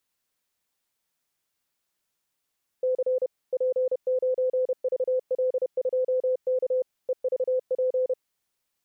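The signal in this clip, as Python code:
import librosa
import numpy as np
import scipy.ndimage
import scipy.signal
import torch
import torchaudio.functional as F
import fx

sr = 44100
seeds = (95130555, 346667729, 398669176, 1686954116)

y = fx.morse(sr, text='C P9VL2K EVP', wpm=31, hz=511.0, level_db=-21.0)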